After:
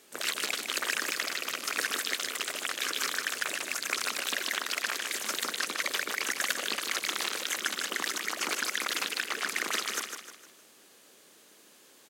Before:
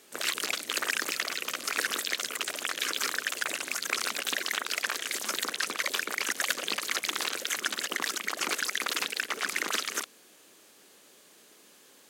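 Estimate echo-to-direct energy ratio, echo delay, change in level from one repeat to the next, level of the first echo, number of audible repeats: −6.0 dB, 153 ms, −7.5 dB, −7.0 dB, 4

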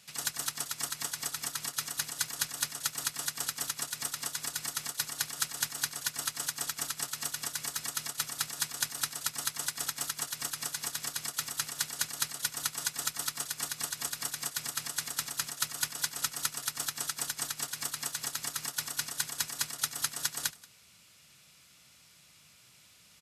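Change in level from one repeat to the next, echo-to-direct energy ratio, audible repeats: repeats not evenly spaced, −19.5 dB, 2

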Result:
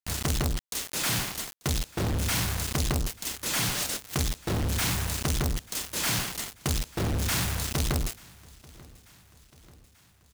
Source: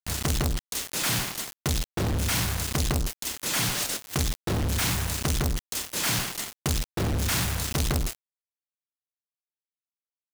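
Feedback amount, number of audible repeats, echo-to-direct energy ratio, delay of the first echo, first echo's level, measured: 58%, 3, −22.0 dB, 888 ms, −23.5 dB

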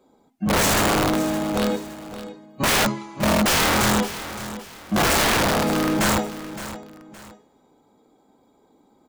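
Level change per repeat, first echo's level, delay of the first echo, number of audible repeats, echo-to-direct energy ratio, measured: −9.5 dB, −13.5 dB, 566 ms, 2, −13.0 dB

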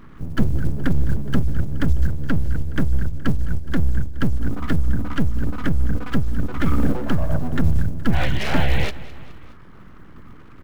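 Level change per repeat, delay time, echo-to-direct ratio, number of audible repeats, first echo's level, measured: −4.5 dB, 210 ms, −17.0 dB, 3, −18.5 dB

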